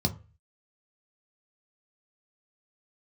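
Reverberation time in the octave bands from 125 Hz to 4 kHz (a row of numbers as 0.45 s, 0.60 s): 0.50 s, 0.30 s, 0.35 s, 0.35 s, 0.35 s, 0.20 s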